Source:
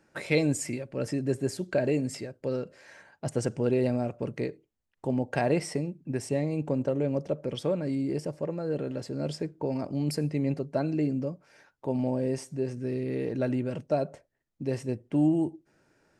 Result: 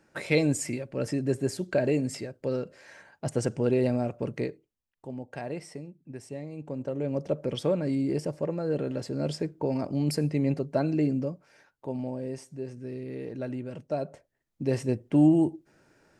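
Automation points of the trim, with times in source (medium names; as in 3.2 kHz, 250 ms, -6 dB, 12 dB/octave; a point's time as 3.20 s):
4.41 s +1 dB
5.06 s -10 dB
6.54 s -10 dB
7.35 s +2 dB
11.12 s +2 dB
12.15 s -6 dB
13.69 s -6 dB
14.77 s +4 dB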